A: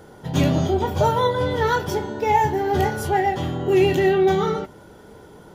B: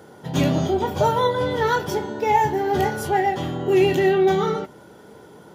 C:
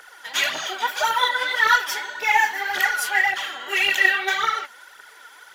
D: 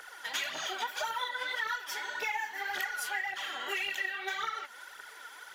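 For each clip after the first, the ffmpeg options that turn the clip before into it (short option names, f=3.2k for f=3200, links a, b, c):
-af "highpass=120"
-af "highpass=f=1.7k:t=q:w=1.9,aphaser=in_gain=1:out_gain=1:delay=4.5:decay=0.59:speed=1.8:type=triangular,volume=5dB"
-af "acompressor=threshold=-30dB:ratio=6,volume=-2.5dB"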